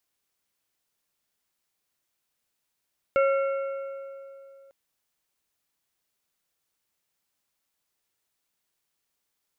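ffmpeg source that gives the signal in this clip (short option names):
-f lavfi -i "aevalsrc='0.126*pow(10,-3*t/2.82)*sin(2*PI*547*t)+0.0562*pow(10,-3*t/2.142)*sin(2*PI*1367.5*t)+0.0251*pow(10,-3*t/1.861)*sin(2*PI*2188*t)+0.0112*pow(10,-3*t/1.74)*sin(2*PI*2735*t)':d=1.55:s=44100"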